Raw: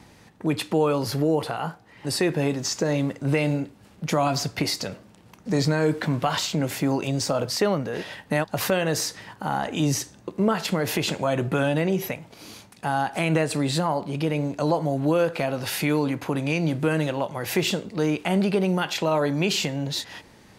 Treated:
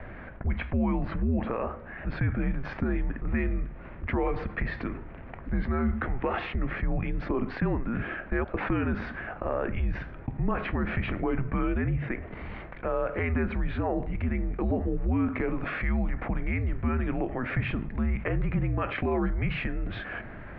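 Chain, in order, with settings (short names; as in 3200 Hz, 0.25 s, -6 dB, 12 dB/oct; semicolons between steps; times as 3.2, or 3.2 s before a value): bell 1000 Hz -8.5 dB 2.9 oct; mistuned SSB -240 Hz 240–2300 Hz; fast leveller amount 50%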